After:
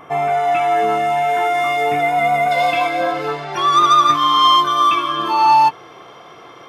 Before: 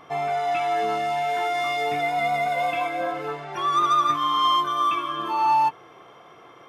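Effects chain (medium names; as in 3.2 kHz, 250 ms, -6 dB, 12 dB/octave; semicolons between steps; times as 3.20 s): peaking EQ 4.5 kHz -10.5 dB 0.77 oct, from 2.51 s +6.5 dB; trim +8 dB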